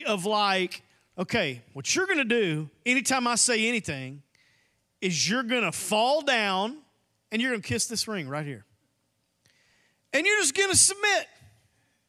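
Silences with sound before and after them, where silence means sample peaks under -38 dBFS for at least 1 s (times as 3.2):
8.58–10.13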